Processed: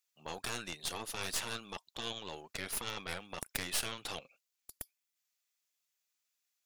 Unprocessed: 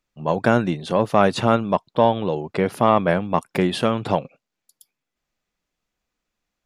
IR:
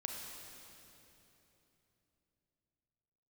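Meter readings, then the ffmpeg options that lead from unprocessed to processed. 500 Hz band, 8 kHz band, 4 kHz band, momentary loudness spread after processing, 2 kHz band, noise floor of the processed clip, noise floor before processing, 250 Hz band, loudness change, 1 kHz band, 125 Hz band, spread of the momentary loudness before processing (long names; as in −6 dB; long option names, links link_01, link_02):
−27.5 dB, +3.0 dB, −6.0 dB, 14 LU, −13.0 dB, below −85 dBFS, −83 dBFS, −28.0 dB, −19.0 dB, −24.0 dB, −25.5 dB, 7 LU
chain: -af "aderivative,afftfilt=real='re*lt(hypot(re,im),0.0447)':imag='im*lt(hypot(re,im),0.0447)':win_size=1024:overlap=0.75,aeval=exprs='0.126*(cos(1*acos(clip(val(0)/0.126,-1,1)))-cos(1*PI/2))+0.0316*(cos(6*acos(clip(val(0)/0.126,-1,1)))-cos(6*PI/2))':channel_layout=same,volume=2.5dB"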